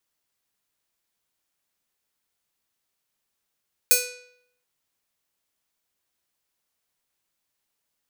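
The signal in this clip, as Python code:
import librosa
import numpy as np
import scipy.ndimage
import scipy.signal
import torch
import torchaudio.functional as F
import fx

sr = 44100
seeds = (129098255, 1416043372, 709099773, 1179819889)

y = fx.pluck(sr, length_s=0.73, note=71, decay_s=0.73, pick=0.49, brightness='bright')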